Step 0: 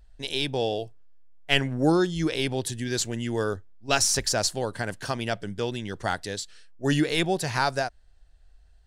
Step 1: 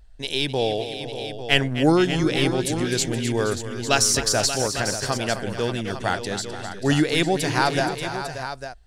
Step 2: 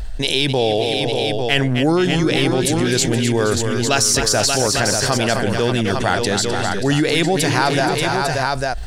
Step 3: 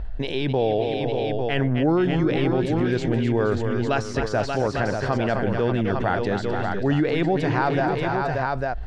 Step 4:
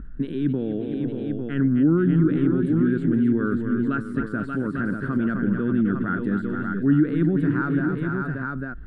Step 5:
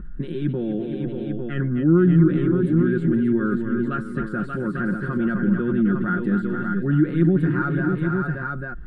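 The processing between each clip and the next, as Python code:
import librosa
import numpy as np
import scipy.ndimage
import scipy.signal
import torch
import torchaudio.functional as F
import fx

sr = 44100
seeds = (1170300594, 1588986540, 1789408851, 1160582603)

y1 = fx.echo_multitap(x, sr, ms=(256, 473, 583, 851), db=(-12.0, -14.0, -11.0, -11.0))
y1 = F.gain(torch.from_numpy(y1), 3.5).numpy()
y2 = fx.env_flatten(y1, sr, amount_pct=70)
y3 = scipy.signal.sosfilt(scipy.signal.bessel(2, 1500.0, 'lowpass', norm='mag', fs=sr, output='sos'), y2)
y3 = F.gain(torch.from_numpy(y3), -3.5).numpy()
y4 = fx.curve_eq(y3, sr, hz=(110.0, 170.0, 290.0, 460.0, 800.0, 1400.0, 2300.0, 3500.0, 6000.0, 8900.0), db=(0, 13, 13, -3, -17, 10, -10, -9, -27, 1))
y4 = F.gain(torch.from_numpy(y4), -7.5).numpy()
y5 = y4 + 0.68 * np.pad(y4, (int(5.6 * sr / 1000.0), 0))[:len(y4)]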